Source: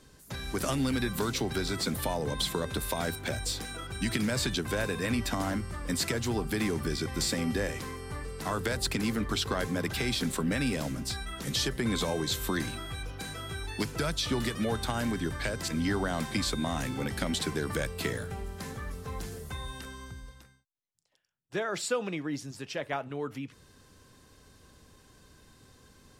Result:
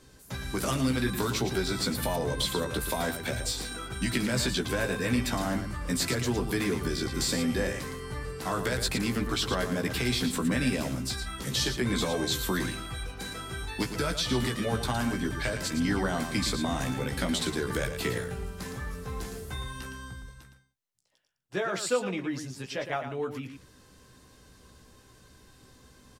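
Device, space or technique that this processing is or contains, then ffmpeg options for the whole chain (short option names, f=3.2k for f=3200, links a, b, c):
slapback doubling: -filter_complex "[0:a]asplit=3[a][b][c];[b]adelay=16,volume=-4.5dB[d];[c]adelay=114,volume=-8dB[e];[a][d][e]amix=inputs=3:normalize=0"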